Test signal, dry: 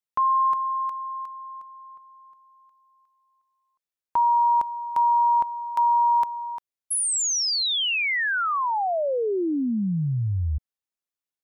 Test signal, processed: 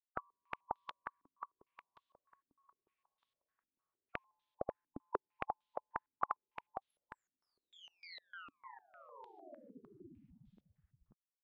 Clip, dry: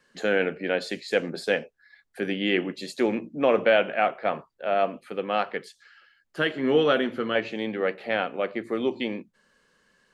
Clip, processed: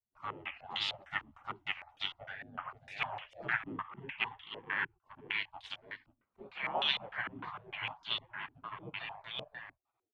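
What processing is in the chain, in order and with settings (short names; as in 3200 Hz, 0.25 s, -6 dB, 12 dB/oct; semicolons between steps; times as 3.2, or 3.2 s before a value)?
echo 0.537 s -4.5 dB; spectral gate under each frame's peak -25 dB weak; stepped low-pass 6.6 Hz 280–3500 Hz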